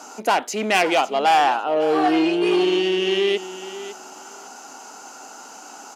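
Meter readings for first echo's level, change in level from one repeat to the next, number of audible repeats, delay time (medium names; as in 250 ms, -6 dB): -14.0 dB, -16.0 dB, 2, 553 ms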